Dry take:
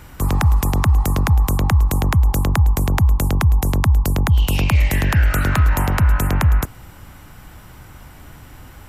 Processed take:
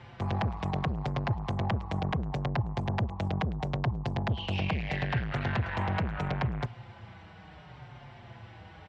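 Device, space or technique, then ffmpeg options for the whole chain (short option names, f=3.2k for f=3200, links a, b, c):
barber-pole flanger into a guitar amplifier: -filter_complex "[0:a]asplit=2[a][b];[b]adelay=5.3,afreqshift=-0.74[c];[a][c]amix=inputs=2:normalize=1,asoftclip=type=tanh:threshold=-21dB,highpass=110,equalizer=f=120:t=q:w=4:g=6,equalizer=f=280:t=q:w=4:g=-9,equalizer=f=720:t=q:w=4:g=5,equalizer=f=1.3k:t=q:w=4:g=-5,lowpass=f=4.1k:w=0.5412,lowpass=f=4.1k:w=1.3066,volume=-2dB"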